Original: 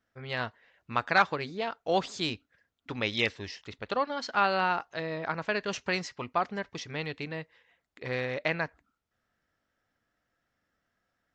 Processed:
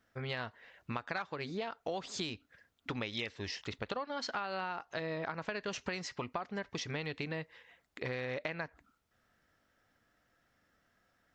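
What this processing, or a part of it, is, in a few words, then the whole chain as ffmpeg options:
serial compression, peaks first: -af "acompressor=threshold=-35dB:ratio=5,acompressor=threshold=-44dB:ratio=2,volume=5.5dB"

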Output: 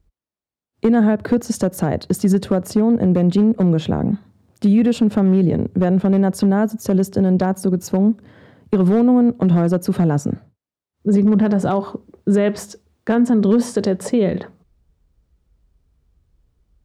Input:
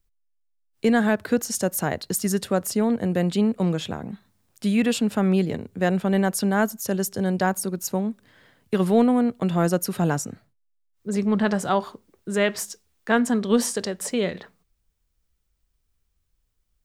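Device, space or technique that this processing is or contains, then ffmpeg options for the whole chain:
mastering chain: -af "highpass=40,equalizer=f=4.1k:t=o:w=0.77:g=2,highshelf=f=11k:g=-7.5,acompressor=threshold=-23dB:ratio=2.5,tiltshelf=f=1.1k:g=9,asoftclip=type=hard:threshold=-10.5dB,alimiter=level_in=14.5dB:limit=-1dB:release=50:level=0:latency=1,volume=-7dB"

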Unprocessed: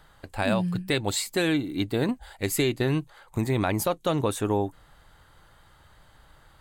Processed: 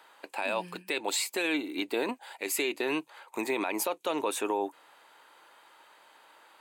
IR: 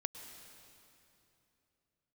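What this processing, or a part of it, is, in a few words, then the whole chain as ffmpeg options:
laptop speaker: -af "highpass=f=320:w=0.5412,highpass=f=320:w=1.3066,equalizer=f=940:t=o:w=0.23:g=7,equalizer=f=2.5k:t=o:w=0.28:g=10,alimiter=limit=-19.5dB:level=0:latency=1:release=47"

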